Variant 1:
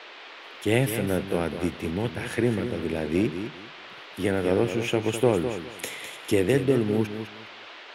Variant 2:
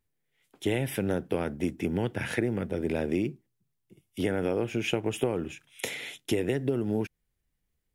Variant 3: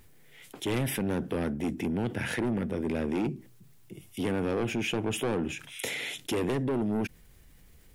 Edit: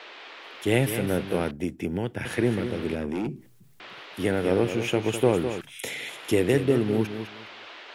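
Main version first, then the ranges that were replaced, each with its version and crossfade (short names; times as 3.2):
1
1.51–2.25 from 2
2.95–3.8 from 3
5.61–6.09 from 3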